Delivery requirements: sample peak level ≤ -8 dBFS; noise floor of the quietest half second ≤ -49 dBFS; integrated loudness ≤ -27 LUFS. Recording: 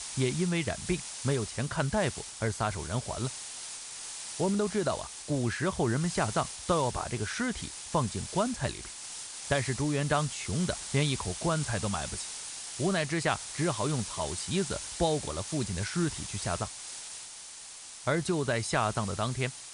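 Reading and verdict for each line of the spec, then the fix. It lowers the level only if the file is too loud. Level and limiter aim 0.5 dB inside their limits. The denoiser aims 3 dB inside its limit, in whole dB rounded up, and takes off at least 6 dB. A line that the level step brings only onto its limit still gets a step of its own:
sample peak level -13.5 dBFS: pass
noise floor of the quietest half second -46 dBFS: fail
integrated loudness -31.5 LUFS: pass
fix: noise reduction 6 dB, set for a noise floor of -46 dBFS

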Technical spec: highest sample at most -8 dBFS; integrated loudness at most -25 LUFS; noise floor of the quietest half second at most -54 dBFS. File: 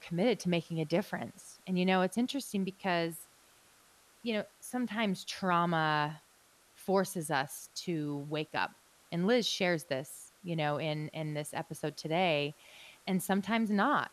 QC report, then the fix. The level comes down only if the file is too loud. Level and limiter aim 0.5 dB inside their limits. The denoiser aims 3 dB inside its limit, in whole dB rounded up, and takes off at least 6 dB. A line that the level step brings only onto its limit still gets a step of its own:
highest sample -16.5 dBFS: pass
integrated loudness -33.5 LUFS: pass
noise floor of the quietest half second -65 dBFS: pass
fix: none needed

